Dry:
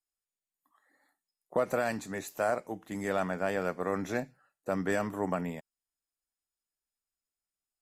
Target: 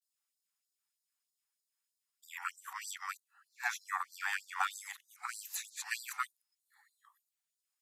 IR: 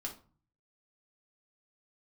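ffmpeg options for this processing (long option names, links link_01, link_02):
-af "areverse,afftfilt=real='re*gte(b*sr/1024,720*pow(3800/720,0.5+0.5*sin(2*PI*3.2*pts/sr)))':imag='im*gte(b*sr/1024,720*pow(3800/720,0.5+0.5*sin(2*PI*3.2*pts/sr)))':win_size=1024:overlap=0.75,volume=4.5dB"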